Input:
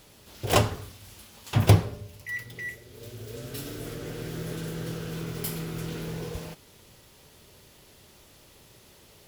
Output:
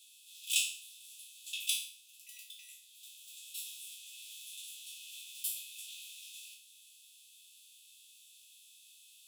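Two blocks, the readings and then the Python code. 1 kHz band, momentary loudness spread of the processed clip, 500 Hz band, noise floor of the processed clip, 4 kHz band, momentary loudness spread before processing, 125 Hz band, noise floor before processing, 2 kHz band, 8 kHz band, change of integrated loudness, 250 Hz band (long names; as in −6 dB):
below −40 dB, 23 LU, below −40 dB, −60 dBFS, −1.0 dB, 21 LU, below −40 dB, −55 dBFS, −9.5 dB, +1.5 dB, −9.5 dB, below −40 dB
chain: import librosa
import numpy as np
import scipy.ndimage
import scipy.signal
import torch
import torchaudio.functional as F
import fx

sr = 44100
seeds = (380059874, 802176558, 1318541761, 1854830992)

y = fx.spec_trails(x, sr, decay_s=0.51)
y = scipy.signal.sosfilt(scipy.signal.cheby1(6, 9, 2500.0, 'highpass', fs=sr, output='sos'), y)
y = y * librosa.db_to_amplitude(1.0)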